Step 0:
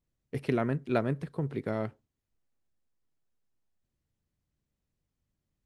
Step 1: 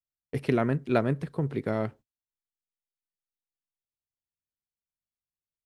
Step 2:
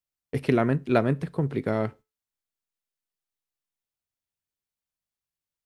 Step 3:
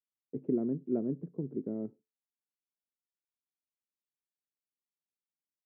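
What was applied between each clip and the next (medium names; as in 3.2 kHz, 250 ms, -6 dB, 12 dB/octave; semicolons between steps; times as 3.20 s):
gate -50 dBFS, range -27 dB; trim +3.5 dB
feedback comb 87 Hz, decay 0.27 s, harmonics all, mix 30%; trim +5 dB
Butterworth band-pass 270 Hz, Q 1.2; trim -6 dB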